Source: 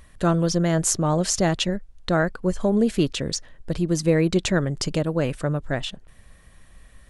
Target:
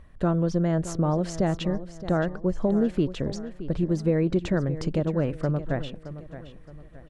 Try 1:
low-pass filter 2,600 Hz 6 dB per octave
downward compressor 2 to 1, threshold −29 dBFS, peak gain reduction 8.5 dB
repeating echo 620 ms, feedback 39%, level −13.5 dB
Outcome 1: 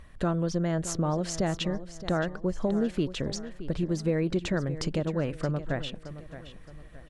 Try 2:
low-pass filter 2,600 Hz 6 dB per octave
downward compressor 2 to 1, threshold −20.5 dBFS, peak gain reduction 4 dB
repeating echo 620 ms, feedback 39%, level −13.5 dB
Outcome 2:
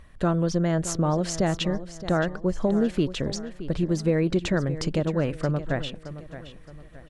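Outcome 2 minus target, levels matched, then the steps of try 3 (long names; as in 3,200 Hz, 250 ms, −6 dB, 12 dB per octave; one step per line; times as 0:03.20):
2,000 Hz band +4.0 dB
low-pass filter 950 Hz 6 dB per octave
downward compressor 2 to 1, threshold −20.5 dBFS, peak gain reduction 4 dB
repeating echo 620 ms, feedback 39%, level −13.5 dB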